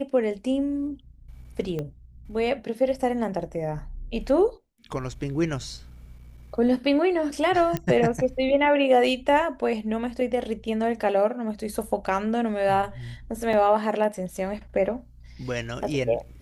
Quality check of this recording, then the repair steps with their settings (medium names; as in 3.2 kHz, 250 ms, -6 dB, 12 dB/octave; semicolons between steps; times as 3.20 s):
1.79 s: pop -19 dBFS
7.77 s: pop -13 dBFS
13.53 s: dropout 3.4 ms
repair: de-click; interpolate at 13.53 s, 3.4 ms